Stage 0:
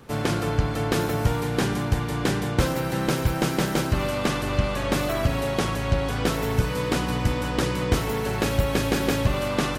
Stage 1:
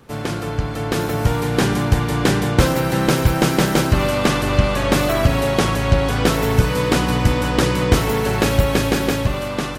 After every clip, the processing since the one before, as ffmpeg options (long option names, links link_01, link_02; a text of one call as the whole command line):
ffmpeg -i in.wav -af "dynaudnorm=framelen=270:gausssize=9:maxgain=8dB" out.wav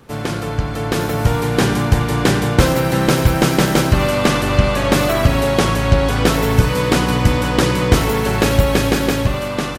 ffmpeg -i in.wav -af "aecho=1:1:90:0.178,volume=2dB" out.wav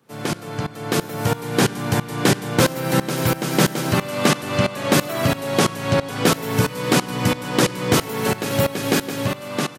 ffmpeg -i in.wav -af "highpass=frequency=120:width=0.5412,highpass=frequency=120:width=1.3066,highshelf=frequency=6200:gain=5,aeval=exprs='val(0)*pow(10,-18*if(lt(mod(-3*n/s,1),2*abs(-3)/1000),1-mod(-3*n/s,1)/(2*abs(-3)/1000),(mod(-3*n/s,1)-2*abs(-3)/1000)/(1-2*abs(-3)/1000))/20)':channel_layout=same,volume=1.5dB" out.wav